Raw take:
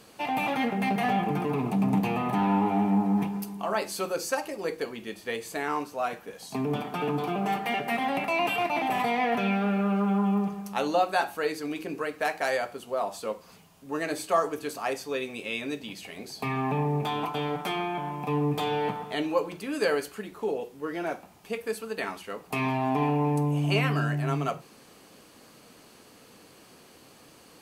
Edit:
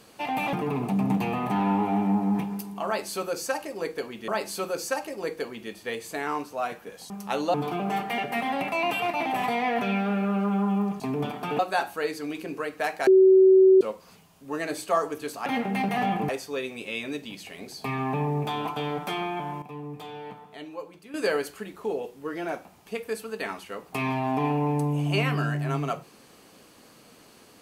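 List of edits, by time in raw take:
0:00.53–0:01.36: move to 0:14.87
0:03.69–0:05.11: repeat, 2 plays
0:06.51–0:07.10: swap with 0:10.56–0:11.00
0:12.48–0:13.22: beep over 379 Hz −12 dBFS
0:18.20–0:19.72: clip gain −11.5 dB

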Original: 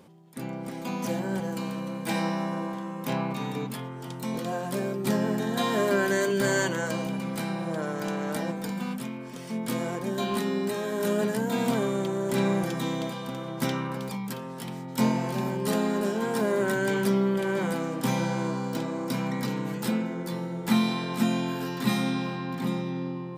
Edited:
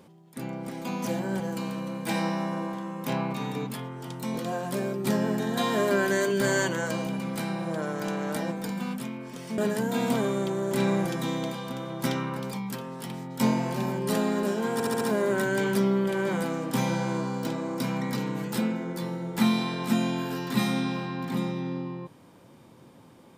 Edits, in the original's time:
0:09.58–0:11.16: remove
0:16.31: stutter 0.07 s, 5 plays

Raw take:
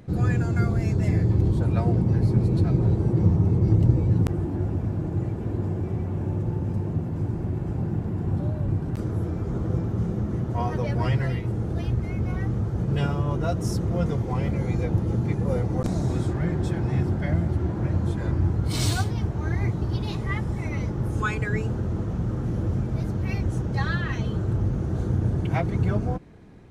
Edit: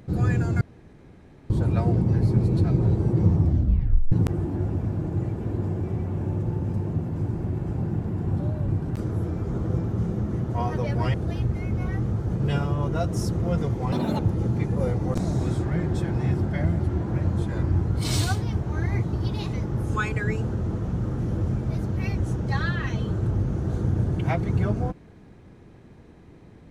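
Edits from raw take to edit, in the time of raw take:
0:00.61–0:01.50: fill with room tone
0:03.37: tape stop 0.75 s
0:11.14–0:11.62: remove
0:14.40–0:14.88: play speed 176%
0:20.22–0:20.79: remove

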